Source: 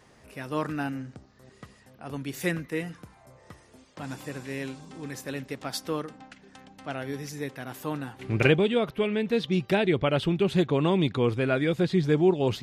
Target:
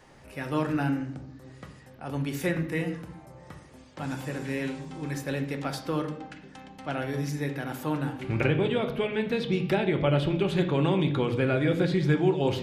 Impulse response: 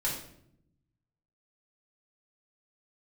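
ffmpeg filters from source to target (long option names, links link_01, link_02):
-filter_complex "[0:a]acrossover=split=720|1800[link_01][link_02][link_03];[link_01]acompressor=threshold=-26dB:ratio=4[link_04];[link_02]acompressor=threshold=-37dB:ratio=4[link_05];[link_03]acompressor=threshold=-38dB:ratio=4[link_06];[link_04][link_05][link_06]amix=inputs=3:normalize=0,asplit=2[link_07][link_08];[1:a]atrim=start_sample=2205,asetrate=42336,aresample=44100,lowpass=3900[link_09];[link_08][link_09]afir=irnorm=-1:irlink=0,volume=-8dB[link_10];[link_07][link_10]amix=inputs=2:normalize=0"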